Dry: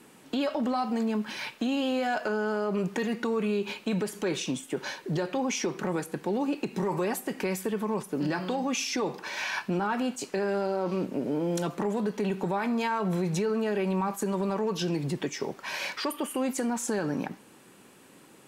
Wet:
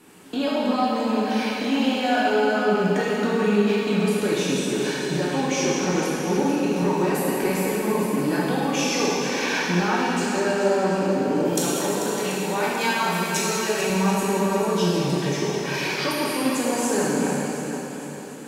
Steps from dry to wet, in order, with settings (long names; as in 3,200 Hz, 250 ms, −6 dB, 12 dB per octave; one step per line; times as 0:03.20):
0:11.45–0:13.90: spectral tilt +3.5 dB per octave
feedback echo with a long and a short gap by turns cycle 735 ms, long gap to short 1.5 to 1, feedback 36%, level −9.5 dB
dense smooth reverb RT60 2.6 s, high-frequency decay 1×, DRR −6.5 dB